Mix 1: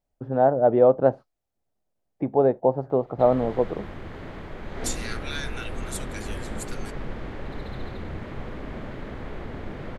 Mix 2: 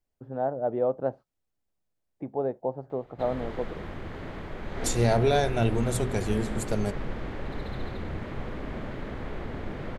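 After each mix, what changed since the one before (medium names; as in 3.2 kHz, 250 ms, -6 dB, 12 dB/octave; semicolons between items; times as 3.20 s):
first voice -9.5 dB; second voice: remove brick-wall FIR high-pass 1.1 kHz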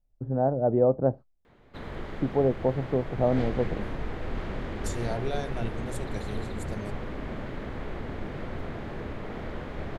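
first voice: add tilt EQ -4 dB/octave; second voice -10.0 dB; background: entry -1.45 s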